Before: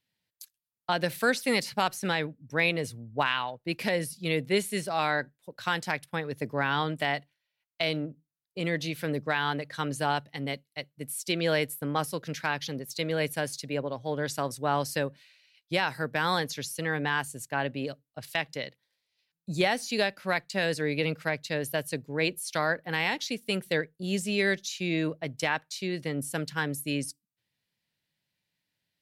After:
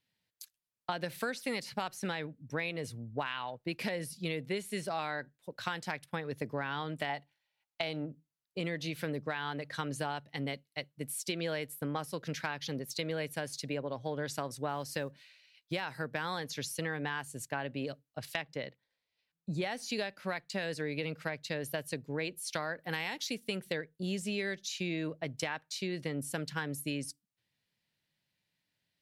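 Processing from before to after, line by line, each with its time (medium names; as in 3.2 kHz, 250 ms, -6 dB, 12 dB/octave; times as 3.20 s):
7.09–8.07 s: peaking EQ 830 Hz +10.5 dB 0.27 oct
14.69–15.86 s: block-companded coder 7-bit
18.42–19.62 s: treble shelf 2.9 kHz -10.5 dB
22.78–23.36 s: treble shelf 4.9 kHz -> 9.7 kHz +11.5 dB
whole clip: treble shelf 9.5 kHz -5.5 dB; compression, threshold -32 dBFS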